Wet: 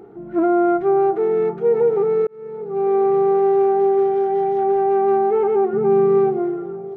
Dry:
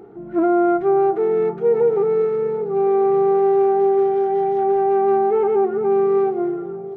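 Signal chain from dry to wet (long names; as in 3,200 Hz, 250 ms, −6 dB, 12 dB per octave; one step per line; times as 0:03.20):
0:02.27–0:02.95: fade in
0:05.73–0:06.38: parametric band 150 Hz +11 dB 1.3 octaves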